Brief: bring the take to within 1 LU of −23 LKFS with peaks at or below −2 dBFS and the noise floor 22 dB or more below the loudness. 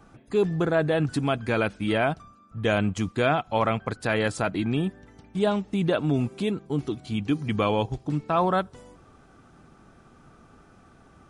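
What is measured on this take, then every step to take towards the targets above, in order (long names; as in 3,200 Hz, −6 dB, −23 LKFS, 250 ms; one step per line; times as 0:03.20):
integrated loudness −26.0 LKFS; sample peak −10.5 dBFS; target loudness −23.0 LKFS
→ level +3 dB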